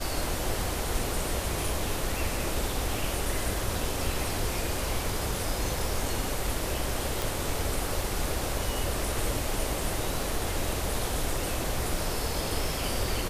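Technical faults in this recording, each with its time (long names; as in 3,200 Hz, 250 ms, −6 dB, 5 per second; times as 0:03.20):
0:07.22: click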